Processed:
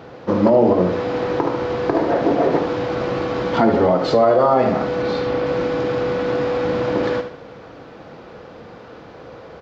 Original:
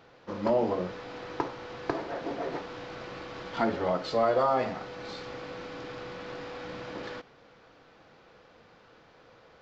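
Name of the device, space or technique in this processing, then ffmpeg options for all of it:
mastering chain: -filter_complex "[0:a]asettb=1/sr,asplit=3[link_01][link_02][link_03];[link_01]atrim=end=5.024[link_04];[link_02]atrim=start=5.02:end=5.46,asetpts=PTS-STARTPTS,afade=type=in:duration=0.004:curve=qsin,afade=type=out:start_time=0.436:duration=0.004:curve=qsin,lowpass=5400[link_05];[link_03]atrim=start=5.456[link_06];[link_04][link_05]acrossfade=duration=0.004:curve1=hsin:curve2=qsin[link_07];[link_07][link_06]acrossfade=duration=0.004:curve1=qsin:curve2=hsin,highpass=44,equalizer=frequency=500:width_type=o:width=2.9:gain=2,aecho=1:1:73|146|219|292:0.316|0.114|0.041|0.0148,acompressor=threshold=-30dB:ratio=2,tiltshelf=frequency=900:gain=4.5,alimiter=level_in=19dB:limit=-1dB:release=50:level=0:latency=1,volume=-4.5dB"

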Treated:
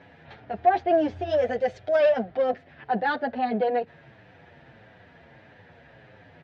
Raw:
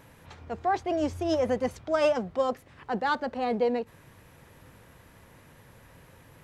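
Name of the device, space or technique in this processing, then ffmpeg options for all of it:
barber-pole flanger into a guitar amplifier: -filter_complex "[0:a]asettb=1/sr,asplit=3[link_01][link_02][link_03];[link_01]atrim=end=1.374[link_04];[link_02]atrim=start=1.37:end=2,asetpts=PTS-STARTPTS,afade=type=in:duration=0.004:curve=qsin,afade=type=out:start_time=0.626:duration=0.004:curve=qsin,equalizer=frequency=250:width_type=o:width=1:gain=-9,equalizer=frequency=500:width_type=o:width=1:gain=6,equalizer=frequency=1000:width_type=o:width=1:gain=-6,equalizer=frequency=8000:width_type=o:width=1:gain=11[link_05];[link_03]atrim=start=1.996[link_06];[link_04][link_05]acrossfade=duration=0.004:curve1=hsin:curve2=qsin[link_07];[link_07][link_06]acrossfade=duration=0.004:curve1=qsin:curve2=hsin,asplit=2[link_08][link_09];[link_09]adelay=7.8,afreqshift=-1.6[link_10];[link_08][link_10]amix=inputs=2:normalize=1,asoftclip=type=tanh:threshold=-21dB,highpass=95,equalizer=frequency=700:width_type=q:width=4:gain=9,equalizer=frequency=1100:width_type=q:width=4:gain=-9,equalizer=frequency=1700:width_type=q:width=4:gain=6,lowpass=frequency=4000:width=0.5412,lowpass=frequency=4000:width=1.3066,volume=5dB"

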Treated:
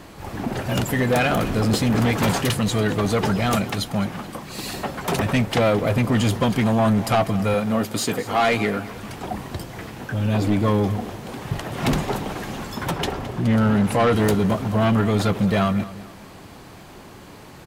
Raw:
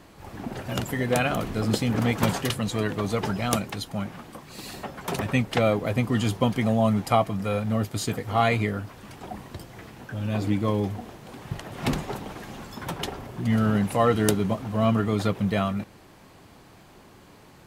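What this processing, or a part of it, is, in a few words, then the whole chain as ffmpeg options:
saturation between pre-emphasis and de-emphasis: -filter_complex "[0:a]asettb=1/sr,asplit=3[link_01][link_02][link_03];[link_01]atrim=end=7.544[link_04];[link_02]atrim=start=7.54:end=8.88,asetpts=PTS-STARTPTS,afade=type=in:duration=0.004:curve=qsin,afade=type=out:start_time=1.336:duration=0.004:curve=qsin,highpass=200[link_05];[link_03]atrim=start=8.876[link_06];[link_04][link_05]acrossfade=duration=0.004:curve1=hsin:curve2=qsin[link_07];[link_07][link_06]acrossfade=duration=0.004:curve1=qsin:curve2=hsin,asettb=1/sr,asplit=3[link_08][link_09][link_10];[link_08]atrim=end=12.914[link_11];[link_09]atrim=start=12.91:end=14.15,asetpts=PTS-STARTPTS,afade=type=in:duration=0.004:curve=qsin,afade=type=out:start_time=1.236:duration=0.004:curve=qsin,highshelf=frequency=8500:gain=-6.5[link_12];[link_10]atrim=start=14.146[link_13];[link_11][link_12]acrossfade=duration=0.004:curve1=hsin:curve2=qsin[link_14];[link_14][link_13]acrossfade=duration=0.004:curve1=qsin:curve2=hsin,highshelf=frequency=6400:gain=11.5,asoftclip=type=tanh:threshold=-22dB,highshelf=frequency=6400:gain=-11.5,aecho=1:1:215|430|645:0.141|0.0551|0.0215,volume=8.5dB"

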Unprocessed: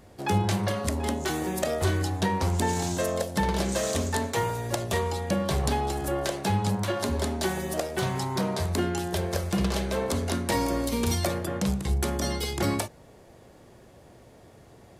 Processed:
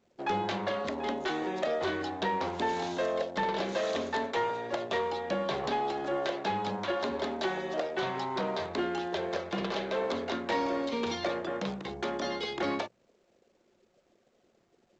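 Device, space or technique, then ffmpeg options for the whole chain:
telephone: -af "anlmdn=0.158,bandreject=frequency=60:width_type=h:width=6,bandreject=frequency=120:width_type=h:width=6,bandreject=frequency=180:width_type=h:width=6,adynamicequalizer=threshold=0.00224:dfrequency=3700:dqfactor=3.2:tfrequency=3700:tqfactor=3.2:attack=5:release=100:ratio=0.375:range=2.5:mode=boostabove:tftype=bell,highpass=310,lowpass=3000,asoftclip=type=tanh:threshold=-21.5dB" -ar 16000 -c:a pcm_alaw

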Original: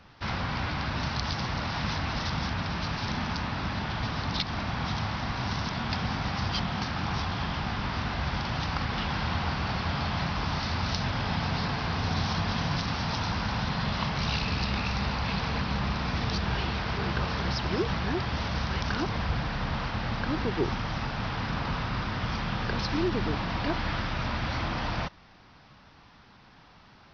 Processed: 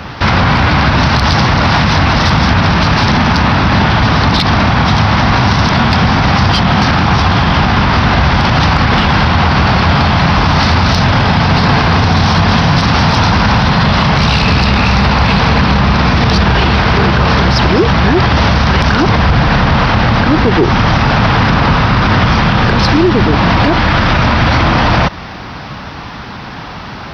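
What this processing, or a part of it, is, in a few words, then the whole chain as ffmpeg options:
mastering chain: -af "highpass=40,equalizer=frequency=5800:width_type=o:width=2.1:gain=-3.5,acompressor=threshold=-32dB:ratio=2.5,asoftclip=type=tanh:threshold=-22dB,alimiter=level_in=30.5dB:limit=-1dB:release=50:level=0:latency=1,volume=-1dB"

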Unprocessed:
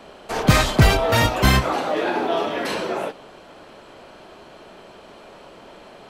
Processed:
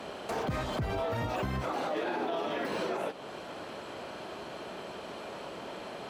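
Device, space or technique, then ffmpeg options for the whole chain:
podcast mastering chain: -af "highpass=73,deesser=0.95,acompressor=threshold=-36dB:ratio=2,alimiter=level_in=2.5dB:limit=-24dB:level=0:latency=1:release=61,volume=-2.5dB,volume=2.5dB" -ar 44100 -c:a libmp3lame -b:a 128k

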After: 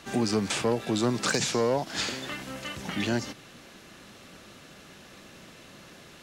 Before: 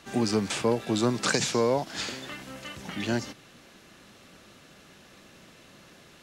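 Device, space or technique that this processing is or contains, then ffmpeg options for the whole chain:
clipper into limiter: -af "asoftclip=type=hard:threshold=-17.5dB,alimiter=limit=-21.5dB:level=0:latency=1:release=208,volume=3.5dB"

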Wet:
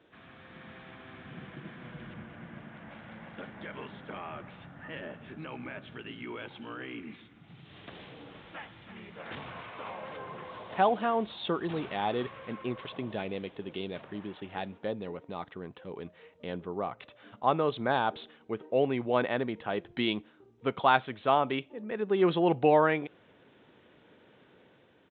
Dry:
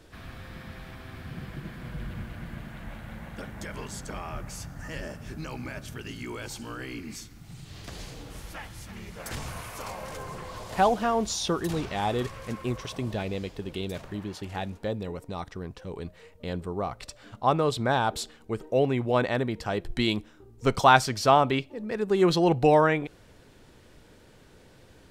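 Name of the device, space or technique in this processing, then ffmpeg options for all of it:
Bluetooth headset: -filter_complex "[0:a]asettb=1/sr,asplit=3[link_01][link_02][link_03];[link_01]atrim=end=2.144[link_04];[link_02]atrim=start=2.14:end=2.91,asetpts=PTS-STARTPTS,afade=type=in:duration=0.004:curve=qsin,afade=type=out:start_time=0.766:duration=0.004:curve=qsin,highshelf=frequency=4200:gain=-10.5[link_05];[link_03]atrim=start=2.906[link_06];[link_04][link_05]acrossfade=duration=0.004:curve1=hsin:curve2=qsin[link_07];[link_07][link_06]acrossfade=duration=0.004:curve1=qsin:curve2=hsin,highpass=180,dynaudnorm=framelen=120:gausssize=9:maxgain=4dB,aresample=8000,aresample=44100,volume=-6.5dB" -ar 16000 -c:a sbc -b:a 64k

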